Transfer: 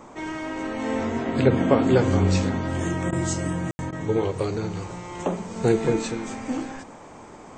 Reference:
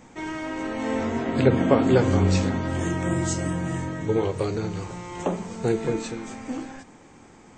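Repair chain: room tone fill 3.71–3.79 s; interpolate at 3.11/3.91 s, 14 ms; noise print and reduce 6 dB; gain correction -3.5 dB, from 5.56 s

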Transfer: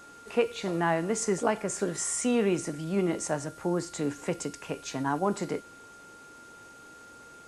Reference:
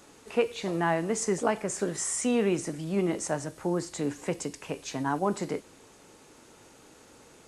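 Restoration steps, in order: band-stop 1.4 kHz, Q 30

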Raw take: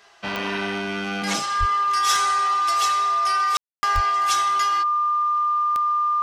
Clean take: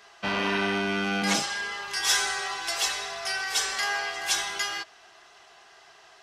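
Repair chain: de-click; band-stop 1.2 kHz, Q 30; de-plosive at 1.59/3.94 s; room tone fill 3.57–3.83 s

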